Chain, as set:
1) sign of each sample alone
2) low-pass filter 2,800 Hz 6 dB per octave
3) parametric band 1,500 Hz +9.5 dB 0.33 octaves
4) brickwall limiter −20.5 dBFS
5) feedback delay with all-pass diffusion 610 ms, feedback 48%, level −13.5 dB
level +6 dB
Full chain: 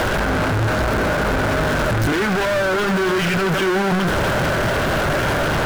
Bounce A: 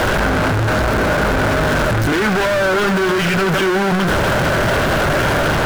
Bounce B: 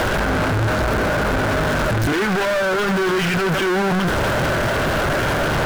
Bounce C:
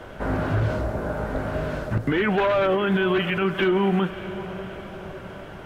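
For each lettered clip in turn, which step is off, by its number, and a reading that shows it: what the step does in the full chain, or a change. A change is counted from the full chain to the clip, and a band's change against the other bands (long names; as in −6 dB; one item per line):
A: 4, average gain reduction 3.0 dB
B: 5, echo-to-direct ratio −12.5 dB to none audible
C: 1, change in crest factor +4.0 dB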